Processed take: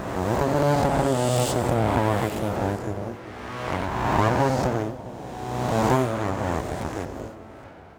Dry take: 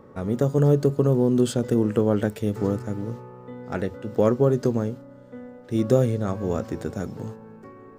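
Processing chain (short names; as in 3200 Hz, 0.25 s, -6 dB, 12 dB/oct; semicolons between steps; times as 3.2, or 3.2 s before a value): spectral swells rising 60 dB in 1.95 s; full-wave rectifier; HPF 41 Hz; split-band echo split 830 Hz, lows 0.403 s, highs 90 ms, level -15.5 dB; 6.72–7.16 Doppler distortion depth 0.33 ms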